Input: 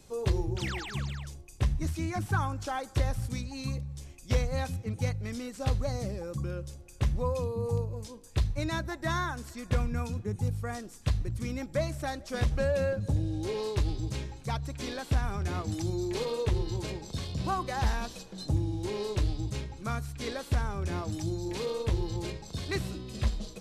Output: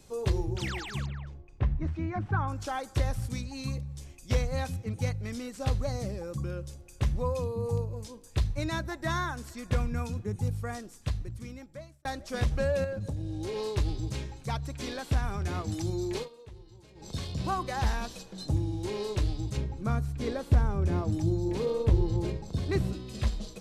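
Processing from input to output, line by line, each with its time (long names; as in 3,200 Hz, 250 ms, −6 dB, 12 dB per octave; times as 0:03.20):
0:01.06–0:02.48: low-pass filter 1,900 Hz
0:10.66–0:12.05: fade out
0:12.84–0:13.56: downward compressor, threshold −30 dBFS
0:16.16–0:17.08: duck −20 dB, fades 0.13 s
0:19.57–0:22.93: tilt shelving filter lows +6 dB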